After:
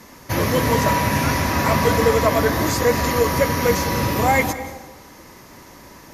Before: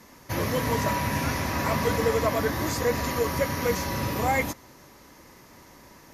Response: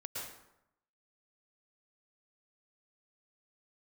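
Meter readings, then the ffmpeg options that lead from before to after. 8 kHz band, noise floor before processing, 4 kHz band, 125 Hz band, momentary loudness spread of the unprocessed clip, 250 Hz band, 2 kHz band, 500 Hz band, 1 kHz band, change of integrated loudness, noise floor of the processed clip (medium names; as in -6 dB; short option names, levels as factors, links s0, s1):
+7.5 dB, -52 dBFS, +7.5 dB, +7.5 dB, 4 LU, +7.5 dB, +7.5 dB, +7.5 dB, +8.0 dB, +7.5 dB, -44 dBFS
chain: -filter_complex "[0:a]asplit=2[s0][s1];[1:a]atrim=start_sample=2205,asetrate=29988,aresample=44100[s2];[s1][s2]afir=irnorm=-1:irlink=0,volume=0.237[s3];[s0][s3]amix=inputs=2:normalize=0,volume=2"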